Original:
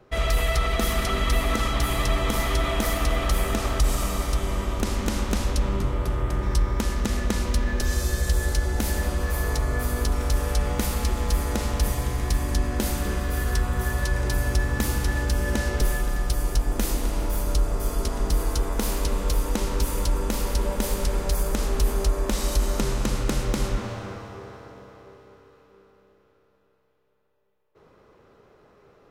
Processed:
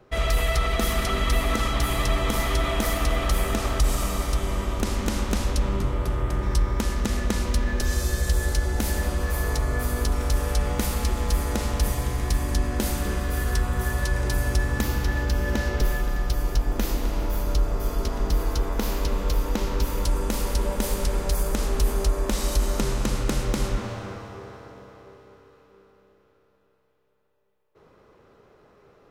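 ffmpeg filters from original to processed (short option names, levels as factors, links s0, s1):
-filter_complex "[0:a]asettb=1/sr,asplit=3[s0][s1][s2];[s0]atrim=end=14.814[s3];[s1]atrim=start=14.81:end=20.05,asetpts=PTS-STARTPTS,afade=t=in:d=0.004:c=qsin,afade=t=out:st=5.236:d=0.004:c=qsin,equalizer=f=9100:t=o:w=0.7:g=-10[s4];[s2]atrim=start=20.046[s5];[s3][s4]acrossfade=d=0.004:c1=hsin:c2=qsin[s6];[s6][s5]acrossfade=d=0.004:c1=qsin:c2=hsin"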